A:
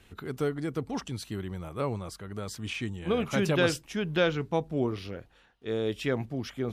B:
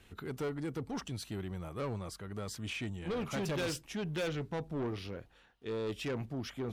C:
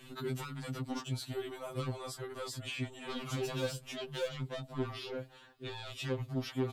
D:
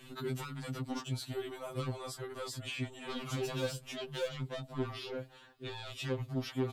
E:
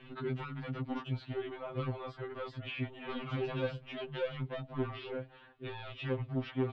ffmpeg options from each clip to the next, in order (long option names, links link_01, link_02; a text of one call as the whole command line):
ffmpeg -i in.wav -af "asoftclip=type=tanh:threshold=-29dB,volume=-2.5dB" out.wav
ffmpeg -i in.wav -filter_complex "[0:a]aecho=1:1:7.5:0.31,acrossover=split=680|1800[link_01][link_02][link_03];[link_01]acompressor=threshold=-47dB:ratio=4[link_04];[link_02]acompressor=threshold=-53dB:ratio=4[link_05];[link_03]acompressor=threshold=-51dB:ratio=4[link_06];[link_04][link_05][link_06]amix=inputs=3:normalize=0,afftfilt=real='re*2.45*eq(mod(b,6),0)':imag='im*2.45*eq(mod(b,6),0)':win_size=2048:overlap=0.75,volume=9.5dB" out.wav
ffmpeg -i in.wav -af anull out.wav
ffmpeg -i in.wav -af "lowpass=frequency=3000:width=0.5412,lowpass=frequency=3000:width=1.3066,volume=1dB" out.wav